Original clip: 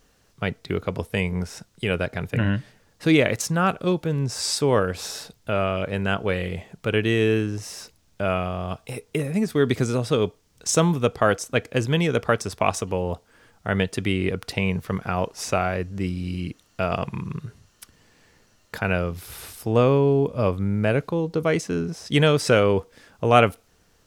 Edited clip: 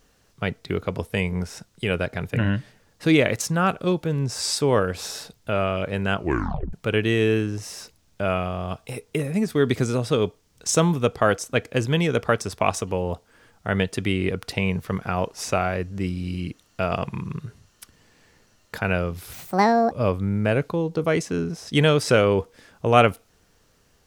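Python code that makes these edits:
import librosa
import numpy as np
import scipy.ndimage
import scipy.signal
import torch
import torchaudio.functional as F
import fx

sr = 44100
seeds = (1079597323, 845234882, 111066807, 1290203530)

y = fx.edit(x, sr, fx.tape_stop(start_s=6.16, length_s=0.57),
    fx.speed_span(start_s=19.33, length_s=0.97, speed=1.66), tone=tone)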